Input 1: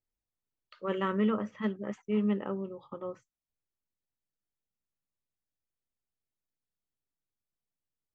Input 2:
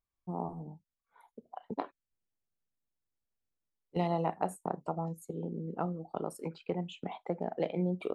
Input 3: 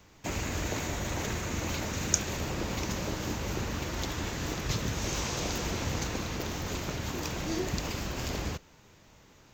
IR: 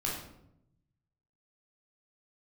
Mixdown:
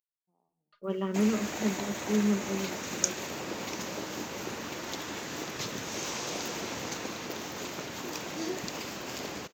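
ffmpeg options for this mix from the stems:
-filter_complex "[0:a]lowshelf=f=500:g=5,agate=range=-33dB:threshold=-51dB:ratio=3:detection=peak,aecho=1:1:4.9:0.86,volume=-7.5dB,asplit=2[a][b];[1:a]lowshelf=f=160:g=-10,acompressor=threshold=-34dB:ratio=6,aexciter=amount=10.8:drive=4.3:freq=3k,volume=-2dB[c];[2:a]highpass=230,adelay=900,volume=-1dB[d];[b]apad=whole_len=359168[e];[c][e]sidechaingate=range=-35dB:threshold=-47dB:ratio=16:detection=peak[f];[a][f][d]amix=inputs=3:normalize=0"

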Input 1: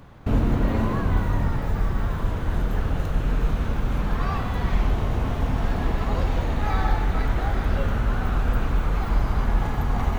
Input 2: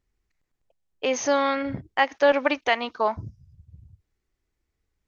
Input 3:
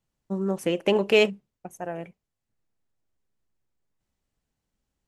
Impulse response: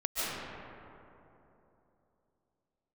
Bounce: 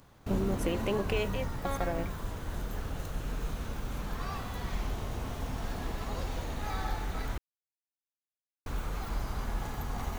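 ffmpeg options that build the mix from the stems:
-filter_complex "[0:a]bass=f=250:g=-3,treble=f=4k:g=12,volume=-10dB,asplit=3[a][b][c];[a]atrim=end=7.38,asetpts=PTS-STARTPTS,afade=t=out:st=7.376:d=0.004:c=hsin[d];[b]atrim=start=7.38:end=8.66,asetpts=PTS-STARTPTS,volume=0[e];[c]atrim=start=8.66,asetpts=PTS-STARTPTS,afade=t=in:d=0.004:c=hsin[f];[d][e][f]concat=n=3:v=0:a=1[g];[1:a]adelay=300,volume=-10dB[h];[2:a]alimiter=limit=-15.5dB:level=0:latency=1,volume=2.5dB,asplit=2[i][j];[j]apad=whole_len=237193[k];[h][k]sidechaingate=range=-33dB:threshold=-42dB:ratio=16:detection=peak[l];[l][i]amix=inputs=2:normalize=0,acompressor=threshold=-29dB:ratio=6,volume=0dB[m];[g][m]amix=inputs=2:normalize=0"

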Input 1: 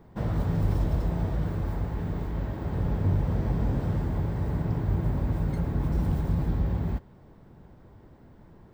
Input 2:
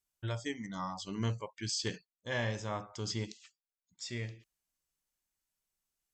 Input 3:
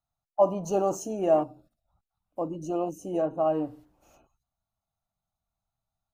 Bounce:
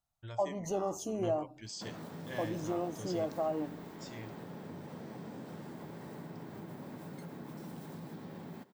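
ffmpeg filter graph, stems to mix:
-filter_complex "[0:a]highpass=f=180:w=0.5412,highpass=f=180:w=1.3066,highshelf=f=3.2k:g=9.5,acompressor=threshold=-35dB:ratio=3,adelay=1650,volume=-8dB[a];[1:a]volume=-9dB[b];[2:a]acompressor=threshold=-32dB:ratio=2.5,volume=-1.5dB[c];[a][b][c]amix=inputs=3:normalize=0"

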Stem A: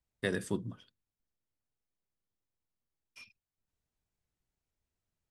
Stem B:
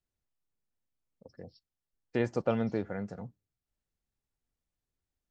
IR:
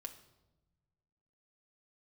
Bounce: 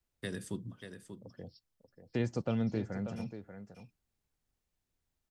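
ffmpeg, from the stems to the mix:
-filter_complex "[0:a]volume=-2.5dB,asplit=2[a][b];[b]volume=-10.5dB[c];[1:a]volume=2dB,asplit=2[d][e];[e]volume=-12.5dB[f];[c][f]amix=inputs=2:normalize=0,aecho=0:1:587:1[g];[a][d][g]amix=inputs=3:normalize=0,acrossover=split=260|3000[h][i][j];[i]acompressor=threshold=-54dB:ratio=1.5[k];[h][k][j]amix=inputs=3:normalize=0"

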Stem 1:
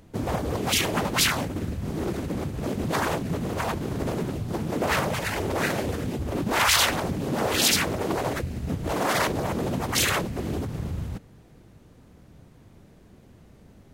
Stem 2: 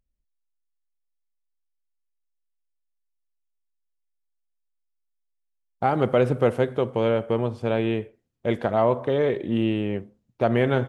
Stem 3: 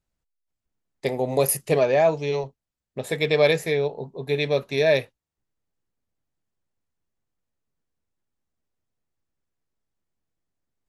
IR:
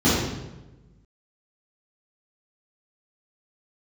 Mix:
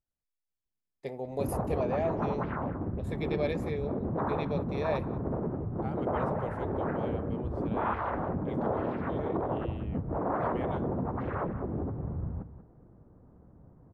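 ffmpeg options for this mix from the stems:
-filter_complex "[0:a]lowpass=f=1.2k:w=0.5412,lowpass=f=1.2k:w=1.3066,adelay=1250,volume=-4.5dB,asplit=2[a][b];[b]volume=-11.5dB[c];[1:a]volume=-19dB[d];[2:a]highshelf=f=2.4k:g=-10.5,volume=-12dB,asplit=2[e][f];[f]volume=-23dB[g];[c][g]amix=inputs=2:normalize=0,aecho=0:1:186:1[h];[a][d][e][h]amix=inputs=4:normalize=0"

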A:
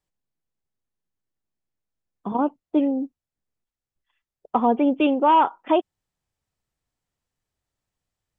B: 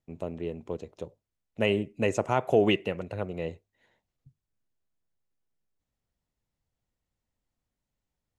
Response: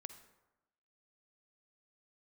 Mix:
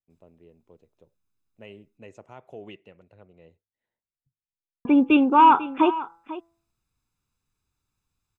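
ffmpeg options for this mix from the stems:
-filter_complex "[0:a]aecho=1:1:0.8:0.66,bandreject=f=167.7:t=h:w=4,bandreject=f=335.4:t=h:w=4,bandreject=f=503.1:t=h:w=4,bandreject=f=670.8:t=h:w=4,bandreject=f=838.5:t=h:w=4,bandreject=f=1.0062k:t=h:w=4,bandreject=f=1.1739k:t=h:w=4,bandreject=f=1.3416k:t=h:w=4,bandreject=f=1.5093k:t=h:w=4,bandreject=f=1.677k:t=h:w=4,bandreject=f=1.8447k:t=h:w=4,bandreject=f=2.0124k:t=h:w=4,adelay=100,volume=1dB,asplit=3[a][b][c];[a]atrim=end=1.98,asetpts=PTS-STARTPTS,afade=t=out:st=1.976:d=0.004:c=hsin[d];[b]atrim=start=1.98:end=4.85,asetpts=PTS-STARTPTS,volume=0[e];[c]atrim=start=4.85,asetpts=PTS-STARTPTS,afade=t=in:d=0.004:c=hsin[f];[d][e][f]concat=n=3:v=0:a=1,asplit=2[g][h];[h]volume=-15.5dB[i];[1:a]lowpass=f=3.4k:p=1,adynamicequalizer=threshold=0.0112:dfrequency=2200:dqfactor=0.7:tfrequency=2200:tqfactor=0.7:attack=5:release=100:ratio=0.375:range=2:mode=boostabove:tftype=highshelf,volume=-19.5dB[j];[i]aecho=0:1:494:1[k];[g][j][k]amix=inputs=3:normalize=0"

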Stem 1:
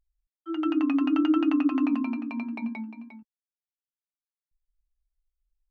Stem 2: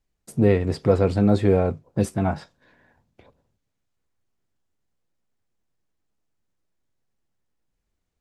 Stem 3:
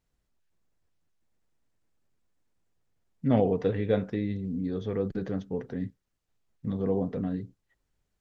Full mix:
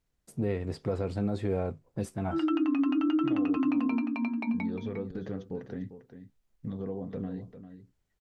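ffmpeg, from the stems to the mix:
-filter_complex "[0:a]adelay=1850,volume=1.5dB[a];[1:a]volume=-10dB[b];[2:a]acompressor=threshold=-30dB:ratio=6,volume=-2dB,asplit=3[c][d][e];[c]atrim=end=3.57,asetpts=PTS-STARTPTS,afade=t=out:st=3.566:d=0.004:c=hsin[f];[d]atrim=start=3.57:end=4.54,asetpts=PTS-STARTPTS,volume=0[g];[e]atrim=start=4.54,asetpts=PTS-STARTPTS,afade=t=in:d=0.004:c=hsin[h];[f][g][h]concat=n=3:v=0:a=1,asplit=2[i][j];[j]volume=-11.5dB,aecho=0:1:398:1[k];[a][b][i][k]amix=inputs=4:normalize=0,alimiter=limit=-20dB:level=0:latency=1:release=76"

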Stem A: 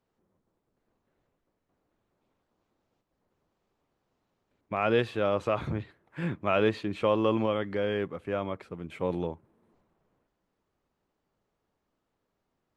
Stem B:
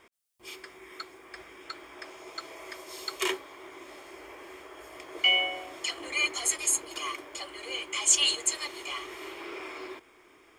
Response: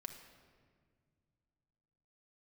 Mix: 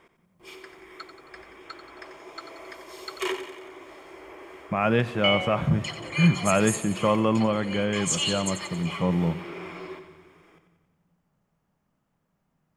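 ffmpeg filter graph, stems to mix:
-filter_complex "[0:a]equalizer=f=160:t=o:w=0.67:g=11,equalizer=f=400:t=o:w=0.67:g=-7,equalizer=f=4k:t=o:w=0.67:g=-7,volume=2dB,asplit=2[a][b];[b]volume=-5dB[c];[1:a]highshelf=f=3k:g=-9,volume=2dB,asplit=2[d][e];[e]volume=-9.5dB[f];[2:a]atrim=start_sample=2205[g];[c][g]afir=irnorm=-1:irlink=0[h];[f]aecho=0:1:90|180|270|360|450|540|630|720|810:1|0.57|0.325|0.185|0.106|0.0602|0.0343|0.0195|0.0111[i];[a][d][h][i]amix=inputs=4:normalize=0"

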